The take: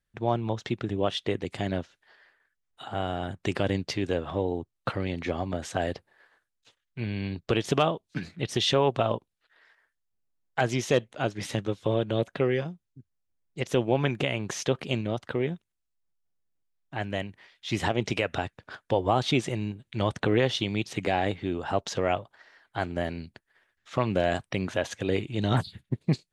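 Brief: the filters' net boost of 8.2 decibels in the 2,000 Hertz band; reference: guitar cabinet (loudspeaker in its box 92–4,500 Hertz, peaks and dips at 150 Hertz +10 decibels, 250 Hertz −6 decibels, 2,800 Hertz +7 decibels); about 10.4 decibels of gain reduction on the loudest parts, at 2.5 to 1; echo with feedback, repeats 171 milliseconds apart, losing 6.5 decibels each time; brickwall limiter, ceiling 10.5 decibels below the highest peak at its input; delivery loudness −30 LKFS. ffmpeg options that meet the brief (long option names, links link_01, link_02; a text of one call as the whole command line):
ffmpeg -i in.wav -af "equalizer=frequency=2000:width_type=o:gain=8,acompressor=threshold=-34dB:ratio=2.5,alimiter=level_in=1.5dB:limit=-24dB:level=0:latency=1,volume=-1.5dB,highpass=92,equalizer=frequency=150:width_type=q:width=4:gain=10,equalizer=frequency=250:width_type=q:width=4:gain=-6,equalizer=frequency=2800:width_type=q:width=4:gain=7,lowpass=frequency=4500:width=0.5412,lowpass=frequency=4500:width=1.3066,aecho=1:1:171|342|513|684|855|1026:0.473|0.222|0.105|0.0491|0.0231|0.0109,volume=7dB" out.wav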